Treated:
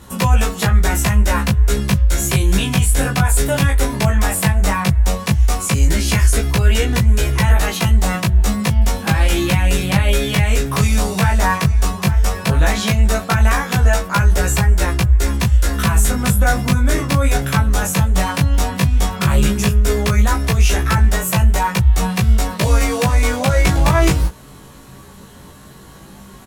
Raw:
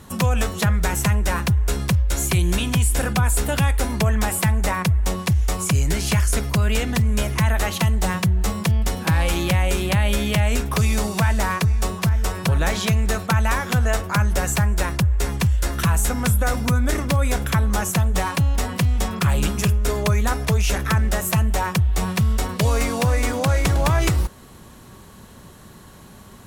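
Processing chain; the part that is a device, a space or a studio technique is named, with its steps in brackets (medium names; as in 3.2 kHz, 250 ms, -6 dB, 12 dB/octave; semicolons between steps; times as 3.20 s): double-tracked vocal (doubling 15 ms -3 dB; chorus 0.14 Hz, delay 17 ms, depth 5 ms); trim +5.5 dB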